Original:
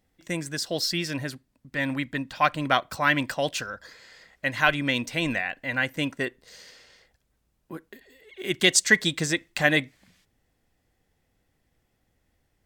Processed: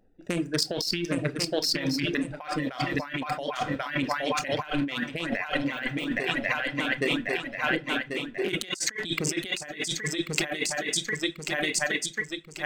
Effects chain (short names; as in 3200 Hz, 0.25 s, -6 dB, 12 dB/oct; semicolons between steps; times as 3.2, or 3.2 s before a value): Wiener smoothing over 41 samples; swung echo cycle 1.089 s, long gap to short 3:1, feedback 42%, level -5.5 dB; 5.66–6.21 de-esser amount 75%; on a send at -7 dB: reverb RT60 0.35 s, pre-delay 26 ms; on the sum: reverb removal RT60 1 s; bell 80 Hz -12.5 dB 2.7 oct; negative-ratio compressor -37 dBFS, ratio -1; gain +6.5 dB